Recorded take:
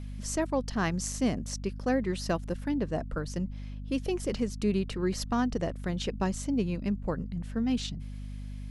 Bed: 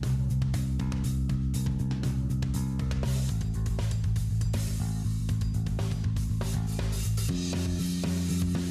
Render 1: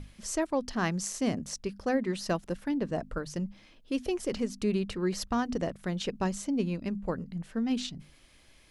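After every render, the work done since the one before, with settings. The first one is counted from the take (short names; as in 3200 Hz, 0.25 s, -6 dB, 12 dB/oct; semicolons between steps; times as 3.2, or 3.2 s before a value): notches 50/100/150/200/250 Hz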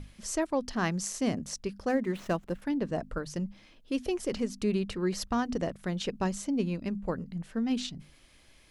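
1.89–2.62 median filter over 9 samples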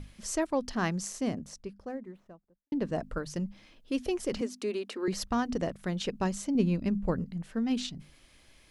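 0.62–2.72 studio fade out; 4.41–5.08 elliptic high-pass 240 Hz; 6.55–7.25 low shelf 270 Hz +7 dB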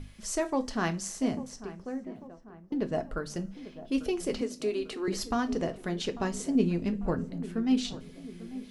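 darkening echo 0.845 s, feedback 59%, low-pass 1200 Hz, level -14.5 dB; two-slope reverb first 0.23 s, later 2.2 s, from -28 dB, DRR 6.5 dB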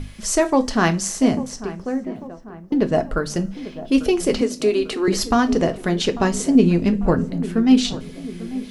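gain +12 dB; limiter -3 dBFS, peak gain reduction 2.5 dB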